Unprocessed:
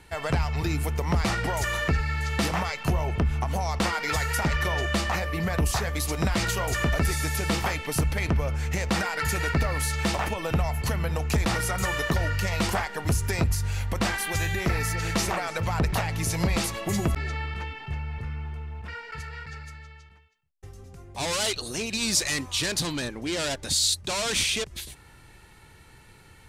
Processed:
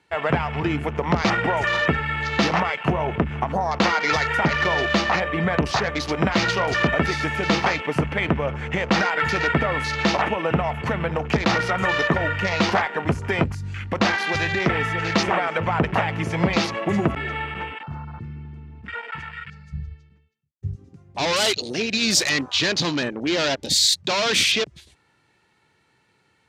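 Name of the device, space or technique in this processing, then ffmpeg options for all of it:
over-cleaned archive recording: -filter_complex "[0:a]highpass=160,lowpass=6400,afwtdn=0.0126,asplit=3[link_01][link_02][link_03];[link_01]afade=type=out:start_time=19.72:duration=0.02[link_04];[link_02]asubboost=boost=12:cutoff=240,afade=type=in:start_time=19.72:duration=0.02,afade=type=out:start_time=20.75:duration=0.02[link_05];[link_03]afade=type=in:start_time=20.75:duration=0.02[link_06];[link_04][link_05][link_06]amix=inputs=3:normalize=0,volume=7.5dB"

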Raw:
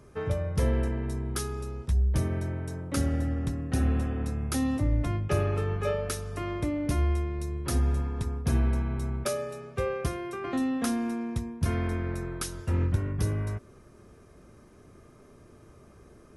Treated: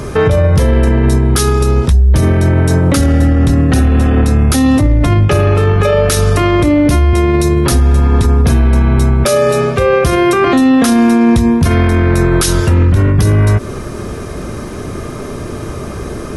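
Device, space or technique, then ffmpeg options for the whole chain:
loud club master: -filter_complex "[0:a]equalizer=frequency=3800:width=1.9:gain=3,asettb=1/sr,asplit=3[link_01][link_02][link_03];[link_01]atrim=end=7.134[link_04];[link_02]atrim=start=7.13:end=7.72,asetpts=PTS-STARTPTS,afade=type=in:duration=0.004:curve=qsin,afade=type=out:start_time=0.586:duration=0.004:curve=qsin,highpass=frequency=90:width=0.5412,highpass=frequency=90:width=1.3066[link_05];[link_03]atrim=start=7.716[link_06];[link_04][link_05]acrossfade=duration=0.004:curve1=hsin:curve2=qsin[link_07];[link_07][link_06]acrossfade=duration=0.004:curve1=qsin:curve2=hsin,acompressor=threshold=-35dB:ratio=1.5,asoftclip=type=hard:threshold=-21.5dB,alimiter=level_in=32.5dB:limit=-1dB:release=50:level=0:latency=1,volume=-2dB"

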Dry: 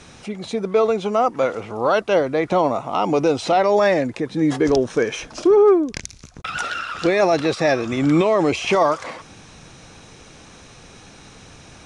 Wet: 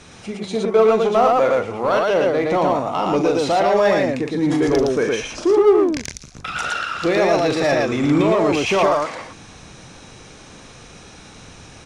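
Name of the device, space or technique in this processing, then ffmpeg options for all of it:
parallel distortion: -filter_complex "[0:a]asettb=1/sr,asplit=3[link_01][link_02][link_03];[link_01]atrim=end=0.564[link_04];[link_02]atrim=start=0.56:end=1.53,asetpts=PTS-STARTPTS,afade=type=in:duration=0.004:curve=qsin,afade=type=out:start_time=0.966:duration=0.004:curve=qsin,equalizer=frequency=790:width_type=o:width=2.9:gain=4.5[link_05];[link_03]atrim=start=1.526[link_06];[link_04][link_05]acrossfade=duration=0.004:curve1=hsin:curve2=qsin[link_07];[link_07][link_06]acrossfade=duration=0.004:curve1=qsin:curve2=hsin,aecho=1:1:40.82|113.7:0.398|0.794,asplit=2[link_08][link_09];[link_09]asoftclip=type=hard:threshold=-16.5dB,volume=-4dB[link_10];[link_08][link_10]amix=inputs=2:normalize=0,volume=-4.5dB"

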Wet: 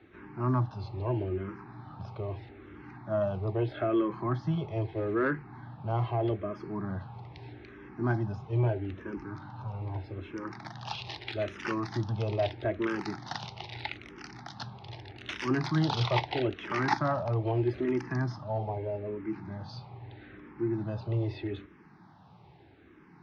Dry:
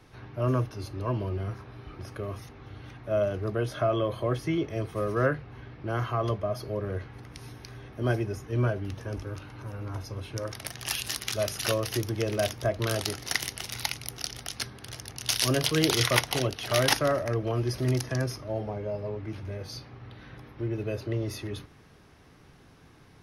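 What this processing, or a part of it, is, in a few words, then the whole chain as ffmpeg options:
barber-pole phaser into a guitar amplifier: -filter_complex "[0:a]asplit=2[link_01][link_02];[link_02]afreqshift=-0.79[link_03];[link_01][link_03]amix=inputs=2:normalize=1,asoftclip=type=tanh:threshold=-18.5dB,highpass=79,equalizer=frequency=110:width_type=q:width=4:gain=3,equalizer=frequency=180:width_type=q:width=4:gain=7,equalizer=frequency=340:width_type=q:width=4:gain=7,equalizer=frequency=500:width_type=q:width=4:gain=-6,equalizer=frequency=860:width_type=q:width=4:gain=10,equalizer=frequency=3000:width_type=q:width=4:gain=-5,lowpass=frequency=3900:width=0.5412,lowpass=frequency=3900:width=1.3066"

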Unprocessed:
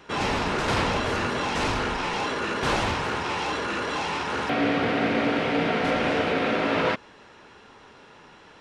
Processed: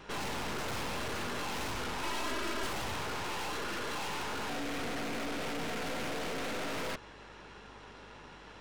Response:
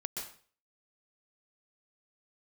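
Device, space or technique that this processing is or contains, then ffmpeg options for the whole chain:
valve amplifier with mains hum: -filter_complex "[0:a]aeval=exprs='(tanh(89.1*val(0)+0.75)-tanh(0.75))/89.1':channel_layout=same,aeval=exprs='val(0)+0.000891*(sin(2*PI*50*n/s)+sin(2*PI*2*50*n/s)/2+sin(2*PI*3*50*n/s)/3+sin(2*PI*4*50*n/s)/4+sin(2*PI*5*50*n/s)/5)':channel_layout=same,asettb=1/sr,asplit=3[link_01][link_02][link_03];[link_01]atrim=end=2.034[link_04];[link_02]atrim=start=2.03:end=2.67,asetpts=PTS-STARTPTS,afade=type=in:duration=0.004:curve=qsin,afade=type=out:start_time=0.636:duration=0.004:curve=qsin,aecho=1:1:3.1:0.7,atrim=end_sample=28224[link_05];[link_03]atrim=start=2.666[link_06];[link_04][link_05]acrossfade=duration=0.004:curve1=hsin:curve2=qsin[link_07];[link_07][link_06]acrossfade=duration=0.004:curve1=qsin:curve2=hsin,volume=2.5dB"

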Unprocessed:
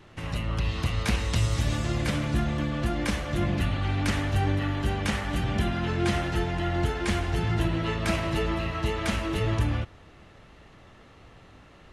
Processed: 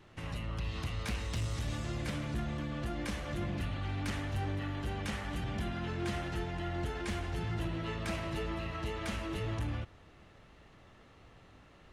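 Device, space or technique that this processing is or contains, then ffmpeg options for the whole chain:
clipper into limiter: -af "asoftclip=type=hard:threshold=-20dB,alimiter=limit=-23dB:level=0:latency=1:release=80,volume=-6.5dB"

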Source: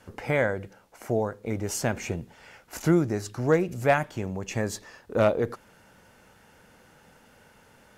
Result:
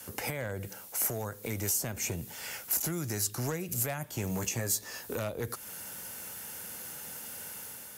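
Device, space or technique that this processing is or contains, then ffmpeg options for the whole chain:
FM broadcast chain: -filter_complex "[0:a]highpass=67,dynaudnorm=framelen=100:gausssize=7:maxgain=4dB,acrossover=split=130|1000[link_01][link_02][link_03];[link_01]acompressor=threshold=-33dB:ratio=4[link_04];[link_02]acompressor=threshold=-33dB:ratio=4[link_05];[link_03]acompressor=threshold=-41dB:ratio=4[link_06];[link_04][link_05][link_06]amix=inputs=3:normalize=0,aemphasis=mode=production:type=75fm,alimiter=limit=-24dB:level=0:latency=1:release=402,asoftclip=type=hard:threshold=-28dB,lowpass=frequency=15000:width=0.5412,lowpass=frequency=15000:width=1.3066,aemphasis=mode=production:type=75fm,aemphasis=mode=reproduction:type=cd,asettb=1/sr,asplit=3[link_07][link_08][link_09];[link_07]atrim=end=4.284[link_10];[link_08]atrim=start=4.28:end=5.16,asetpts=PTS-STARTPTS,afade=type=in:duration=0.004:curve=qsin,afade=type=out:start_time=0.876:duration=0.004:curve=qsin,asplit=2[link_11][link_12];[link_12]adelay=17,volume=-6dB[link_13];[link_11][link_13]amix=inputs=2:normalize=0,atrim=end_sample=38808[link_14];[link_09]atrim=start=5.156[link_15];[link_10][link_14]acrossfade=duration=0.004:curve1=hsin:curve2=qsin[link_16];[link_16][link_15]acrossfade=duration=0.004:curve1=qsin:curve2=hsin,volume=1dB"

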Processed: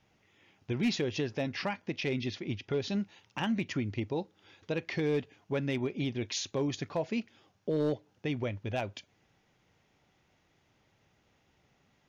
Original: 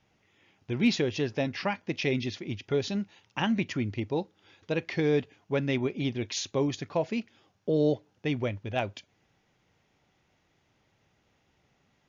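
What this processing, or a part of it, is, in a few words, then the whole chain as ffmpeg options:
clipper into limiter: -filter_complex "[0:a]asoftclip=type=hard:threshold=-19dB,alimiter=limit=-23.5dB:level=0:latency=1:release=197,asettb=1/sr,asplit=3[link_01][link_02][link_03];[link_01]atrim=end=1.894[link_04];[link_02]atrim=start=1.89:end=2.9,asetpts=PTS-STARTPTS,afade=type=in:duration=0.004:curve=qsin,afade=type=out:start_time=1.006:duration=0.004:curve=qsin,lowpass=6100[link_05];[link_03]atrim=start=2.896[link_06];[link_04][link_05]acrossfade=duration=0.004:curve1=hsin:curve2=qsin[link_07];[link_07][link_06]acrossfade=duration=0.004:curve1=qsin:curve2=hsin"

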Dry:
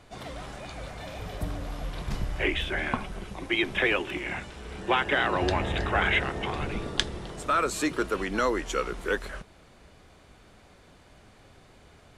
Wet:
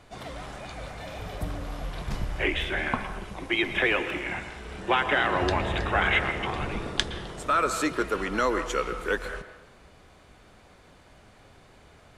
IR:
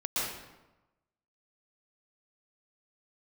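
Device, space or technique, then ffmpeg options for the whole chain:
filtered reverb send: -filter_complex "[0:a]asplit=2[link_01][link_02];[link_02]highpass=480,lowpass=3000[link_03];[1:a]atrim=start_sample=2205[link_04];[link_03][link_04]afir=irnorm=-1:irlink=0,volume=-14.5dB[link_05];[link_01][link_05]amix=inputs=2:normalize=0"

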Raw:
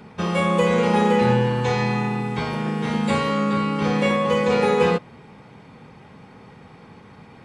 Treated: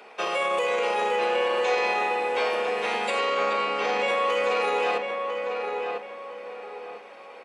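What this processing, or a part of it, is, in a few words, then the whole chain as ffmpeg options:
laptop speaker: -filter_complex "[0:a]asettb=1/sr,asplit=3[link_01][link_02][link_03];[link_01]atrim=end=3.194[link_04];[link_02]atrim=start=3.19:end=4.08,asetpts=PTS-STARTPTS,afade=type=in:duration=0.004:curve=qsin,afade=type=out:start_time=0.886:duration=0.004:curve=qsin,lowpass=frequency=7900:width=0.5412,lowpass=frequency=7900:width=1.3066[link_05];[link_03]atrim=start=4.076[link_06];[link_04][link_05]acrossfade=duration=0.004:curve1=hsin:curve2=qsin[link_07];[link_07][link_06]acrossfade=duration=0.004:curve1=qsin:curve2=hsin,highpass=frequency=420:width=0.5412,highpass=frequency=420:width=1.3066,equalizer=frequency=710:width_type=o:width=0.51:gain=5,equalizer=frequency=2600:width_type=o:width=0.36:gain=7,bandreject=frequency=880:width=12,alimiter=limit=-17.5dB:level=0:latency=1:release=17,asplit=2[link_08][link_09];[link_09]adelay=999,lowpass=frequency=2100:poles=1,volume=-4dB,asplit=2[link_10][link_11];[link_11]adelay=999,lowpass=frequency=2100:poles=1,volume=0.36,asplit=2[link_12][link_13];[link_13]adelay=999,lowpass=frequency=2100:poles=1,volume=0.36,asplit=2[link_14][link_15];[link_15]adelay=999,lowpass=frequency=2100:poles=1,volume=0.36,asplit=2[link_16][link_17];[link_17]adelay=999,lowpass=frequency=2100:poles=1,volume=0.36[link_18];[link_08][link_10][link_12][link_14][link_16][link_18]amix=inputs=6:normalize=0"

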